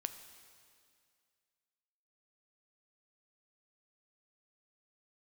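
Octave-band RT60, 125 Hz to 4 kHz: 2.1, 2.2, 2.2, 2.2, 2.2, 2.2 seconds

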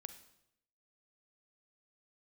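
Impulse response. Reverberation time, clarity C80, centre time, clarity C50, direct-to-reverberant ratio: 0.80 s, 13.5 dB, 9 ms, 11.0 dB, 10.0 dB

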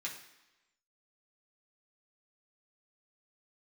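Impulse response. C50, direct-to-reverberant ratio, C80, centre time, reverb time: 7.5 dB, −4.0 dB, 10.5 dB, 26 ms, 1.0 s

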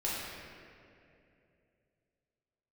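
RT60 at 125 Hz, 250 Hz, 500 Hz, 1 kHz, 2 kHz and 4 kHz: 3.4, 3.0, 3.1, 2.2, 2.4, 1.6 seconds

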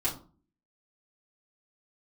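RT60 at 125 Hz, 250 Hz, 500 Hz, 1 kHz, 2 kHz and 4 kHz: 0.55, 0.60, 0.40, 0.40, 0.25, 0.25 seconds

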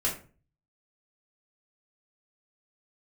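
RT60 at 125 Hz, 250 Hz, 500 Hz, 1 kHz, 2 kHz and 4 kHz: 0.70, 0.50, 0.40, 0.35, 0.35, 0.25 seconds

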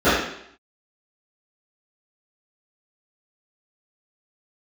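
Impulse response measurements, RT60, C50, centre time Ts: 0.70 s, 0.5 dB, 64 ms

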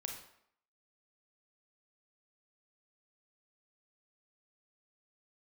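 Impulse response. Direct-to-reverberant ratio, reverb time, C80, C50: 2.0 dB, 0.70 s, 8.5 dB, 5.0 dB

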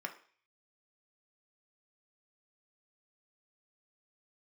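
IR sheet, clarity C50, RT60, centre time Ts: 12.5 dB, 0.45 s, 10 ms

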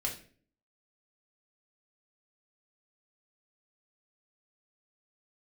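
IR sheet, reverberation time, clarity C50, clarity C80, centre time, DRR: 0.45 s, 9.0 dB, 14.0 dB, 20 ms, −1.0 dB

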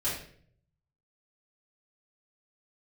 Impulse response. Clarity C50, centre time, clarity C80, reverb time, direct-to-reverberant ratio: 3.5 dB, 42 ms, 7.5 dB, 0.55 s, −10.5 dB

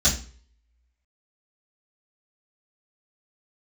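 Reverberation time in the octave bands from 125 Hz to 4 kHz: 0.55, 0.40, 0.45, 0.40, 0.40, 0.40 seconds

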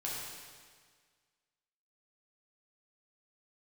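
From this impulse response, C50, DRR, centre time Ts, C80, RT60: −1.0 dB, −6.0 dB, 105 ms, 1.0 dB, 1.7 s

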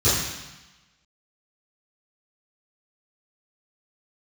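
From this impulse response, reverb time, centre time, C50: 1.0 s, 72 ms, 0.5 dB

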